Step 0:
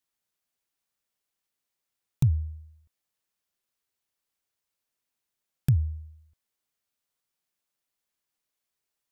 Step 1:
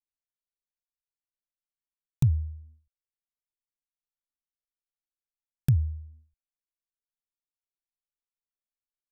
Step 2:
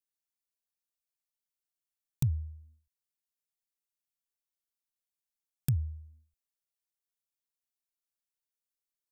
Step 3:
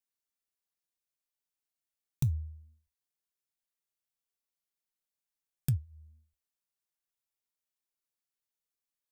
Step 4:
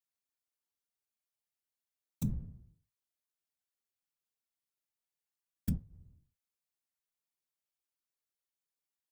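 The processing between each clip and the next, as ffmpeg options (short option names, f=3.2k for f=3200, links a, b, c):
-af "anlmdn=0.01"
-af "highshelf=f=3.7k:g=11,volume=-6.5dB"
-af "flanger=delay=4.3:depth=3.4:regen=-74:speed=0.22:shape=sinusoidal,volume=3.5dB"
-af "afftfilt=real='hypot(re,im)*cos(2*PI*random(0))':imag='hypot(re,im)*sin(2*PI*random(1))':win_size=512:overlap=0.75,volume=2.5dB"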